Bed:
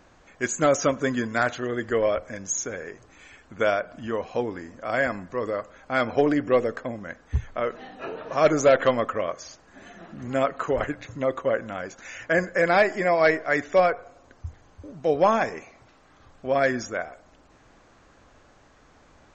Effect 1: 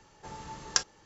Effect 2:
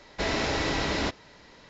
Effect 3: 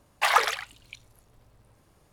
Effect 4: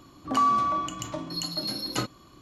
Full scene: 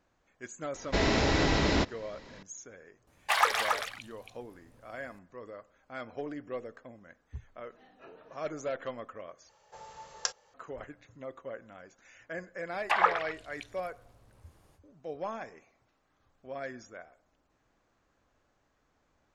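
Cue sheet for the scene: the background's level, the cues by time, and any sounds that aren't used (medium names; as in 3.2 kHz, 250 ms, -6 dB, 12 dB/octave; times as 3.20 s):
bed -17.5 dB
0.74 s: add 2 -1 dB + bass shelf 430 Hz +5.5 dB
3.07 s: add 3 -4 dB + delay 276 ms -5 dB
9.49 s: replace with 1 -6 dB + resonant low shelf 400 Hz -8.5 dB, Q 3
12.68 s: add 3 -2 dB, fades 0.05 s + low-pass that closes with the level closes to 1.8 kHz, closed at -22.5 dBFS
not used: 4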